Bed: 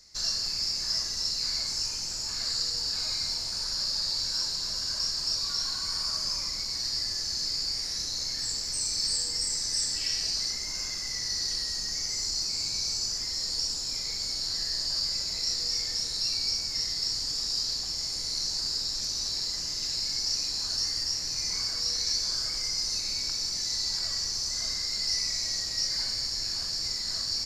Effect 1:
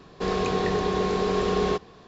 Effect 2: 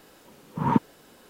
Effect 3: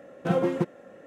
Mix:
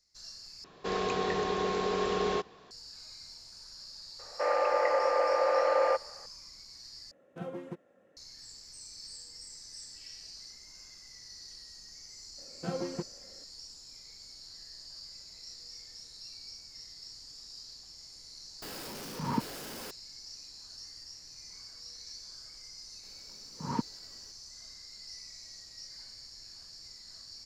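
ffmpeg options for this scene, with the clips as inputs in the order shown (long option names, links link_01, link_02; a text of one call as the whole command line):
ffmpeg -i bed.wav -i cue0.wav -i cue1.wav -i cue2.wav -filter_complex "[1:a]asplit=2[link_01][link_02];[3:a]asplit=2[link_03][link_04];[2:a]asplit=2[link_05][link_06];[0:a]volume=-18dB[link_07];[link_01]lowshelf=frequency=250:gain=-10[link_08];[link_02]highpass=frequency=370:width_type=q:width=0.5412,highpass=frequency=370:width_type=q:width=1.307,lowpass=frequency=2200:width_type=q:width=0.5176,lowpass=frequency=2200:width_type=q:width=0.7071,lowpass=frequency=2200:width_type=q:width=1.932,afreqshift=120[link_09];[link_05]aeval=exprs='val(0)+0.5*0.0473*sgn(val(0))':channel_layout=same[link_10];[link_07]asplit=3[link_11][link_12][link_13];[link_11]atrim=end=0.644[link_14];[link_08]atrim=end=2.07,asetpts=PTS-STARTPTS,volume=-3.5dB[link_15];[link_12]atrim=start=2.706:end=7.114[link_16];[link_03]atrim=end=1.06,asetpts=PTS-STARTPTS,volume=-16dB[link_17];[link_13]atrim=start=8.166[link_18];[link_09]atrim=end=2.07,asetpts=PTS-STARTPTS,afade=type=in:duration=0.004:curve=hsin,afade=type=out:start_time=2.066:duration=0.004:curve=hsin,adelay=4190[link_19];[link_04]atrim=end=1.06,asetpts=PTS-STARTPTS,volume=-11dB,afade=type=in:duration=0.004:curve=hsin,afade=type=out:start_time=1.056:duration=0.004:curve=hsin,adelay=12380[link_20];[link_10]atrim=end=1.29,asetpts=PTS-STARTPTS,volume=-11.5dB,afade=type=in:duration=0.004:curve=hsin,afade=type=out:start_time=1.286:duration=0.004:curve=hsin,adelay=18620[link_21];[link_06]atrim=end=1.29,asetpts=PTS-STARTPTS,volume=-11.5dB,afade=type=in:duration=0.004:curve=hsin,afade=type=out:start_time=1.286:duration=0.004:curve=hsin,adelay=23030[link_22];[link_14][link_15]acrossfade=duration=0.004:curve1=hsin:curve2=hsin[link_23];[link_23][link_16]acrossfade=duration=0.004:curve1=hsin:curve2=hsin[link_24];[link_24][link_17]acrossfade=duration=0.004:curve1=hsin:curve2=hsin[link_25];[link_25][link_18]acrossfade=duration=0.004:curve1=hsin:curve2=hsin[link_26];[link_26][link_19][link_20][link_21][link_22]amix=inputs=5:normalize=0" out.wav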